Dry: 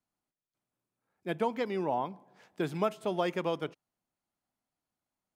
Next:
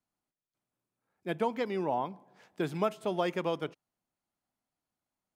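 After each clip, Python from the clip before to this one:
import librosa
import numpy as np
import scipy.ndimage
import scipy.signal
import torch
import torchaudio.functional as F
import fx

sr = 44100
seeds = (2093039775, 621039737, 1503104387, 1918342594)

y = x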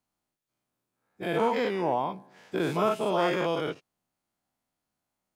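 y = fx.spec_dilate(x, sr, span_ms=120)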